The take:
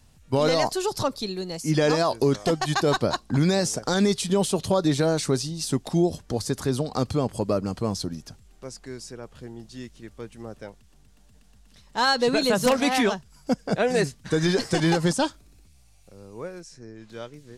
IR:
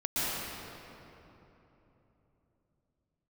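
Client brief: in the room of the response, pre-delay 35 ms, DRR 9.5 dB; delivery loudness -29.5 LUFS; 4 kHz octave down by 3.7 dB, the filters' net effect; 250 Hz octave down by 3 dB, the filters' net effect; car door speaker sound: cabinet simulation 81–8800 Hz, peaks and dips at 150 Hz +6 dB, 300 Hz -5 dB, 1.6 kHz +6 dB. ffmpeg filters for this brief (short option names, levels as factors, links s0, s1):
-filter_complex "[0:a]equalizer=f=250:t=o:g=-4.5,equalizer=f=4000:t=o:g=-4.5,asplit=2[s0][s1];[1:a]atrim=start_sample=2205,adelay=35[s2];[s1][s2]afir=irnorm=-1:irlink=0,volume=0.112[s3];[s0][s3]amix=inputs=2:normalize=0,highpass=81,equalizer=f=150:t=q:w=4:g=6,equalizer=f=300:t=q:w=4:g=-5,equalizer=f=1600:t=q:w=4:g=6,lowpass=f=8800:w=0.5412,lowpass=f=8800:w=1.3066,volume=0.562"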